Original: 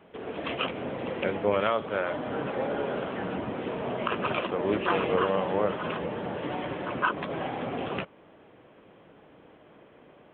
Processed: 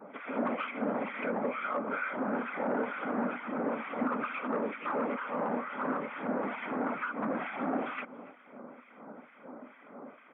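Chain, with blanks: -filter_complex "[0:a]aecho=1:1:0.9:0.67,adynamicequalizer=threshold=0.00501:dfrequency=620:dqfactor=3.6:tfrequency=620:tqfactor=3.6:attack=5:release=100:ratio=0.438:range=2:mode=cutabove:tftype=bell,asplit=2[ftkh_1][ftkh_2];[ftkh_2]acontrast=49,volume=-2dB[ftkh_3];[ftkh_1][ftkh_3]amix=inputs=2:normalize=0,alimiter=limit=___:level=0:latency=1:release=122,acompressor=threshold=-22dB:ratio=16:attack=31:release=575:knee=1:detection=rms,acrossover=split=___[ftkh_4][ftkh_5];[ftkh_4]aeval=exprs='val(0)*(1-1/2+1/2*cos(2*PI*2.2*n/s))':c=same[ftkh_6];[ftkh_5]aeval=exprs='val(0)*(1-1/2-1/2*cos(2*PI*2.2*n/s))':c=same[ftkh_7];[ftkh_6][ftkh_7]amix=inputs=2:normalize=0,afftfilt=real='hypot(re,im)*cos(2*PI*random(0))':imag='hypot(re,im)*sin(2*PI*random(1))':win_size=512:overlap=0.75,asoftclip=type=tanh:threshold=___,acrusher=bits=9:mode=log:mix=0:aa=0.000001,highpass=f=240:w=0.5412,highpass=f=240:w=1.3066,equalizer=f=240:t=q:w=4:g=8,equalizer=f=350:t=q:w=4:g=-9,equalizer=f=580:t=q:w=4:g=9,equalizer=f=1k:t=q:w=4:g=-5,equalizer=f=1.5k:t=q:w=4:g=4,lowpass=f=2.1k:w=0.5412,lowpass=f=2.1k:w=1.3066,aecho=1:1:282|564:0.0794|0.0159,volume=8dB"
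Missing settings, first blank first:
-10dB, 1400, -34dB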